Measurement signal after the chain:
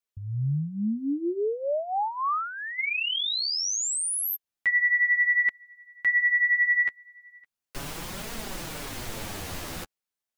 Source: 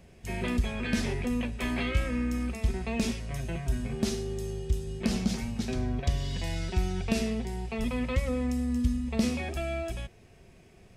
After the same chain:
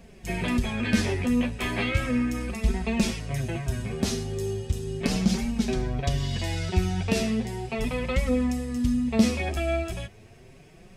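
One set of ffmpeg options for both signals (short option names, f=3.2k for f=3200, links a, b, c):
-af "flanger=delay=4.2:depth=7.9:regen=7:speed=0.36:shape=triangular,volume=8dB"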